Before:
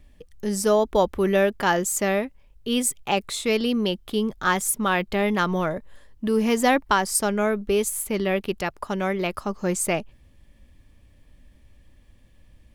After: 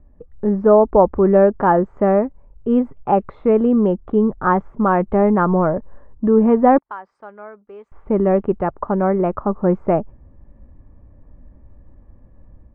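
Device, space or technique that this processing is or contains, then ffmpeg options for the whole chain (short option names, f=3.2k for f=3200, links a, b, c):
action camera in a waterproof case: -filter_complex "[0:a]asettb=1/sr,asplit=3[a][b][c];[a]atrim=end=6.784[d];[b]atrim=start=6.78:end=7.92,asetpts=PTS-STARTPTS,afade=t=in:d=0.004:c=qsin,afade=t=out:st=1.136:d=0.004:c=qsin,aderivative[e];[c]atrim=start=7.916[f];[d][e]acrossfade=d=0.004:c1=hsin:c2=qsin[g];[g][f]acrossfade=d=0.004:c1=qsin:c2=hsin,lowpass=f=1.2k:w=0.5412,lowpass=f=1.2k:w=1.3066,dynaudnorm=f=160:g=3:m=6dB,volume=2.5dB" -ar 22050 -c:a aac -b:a 96k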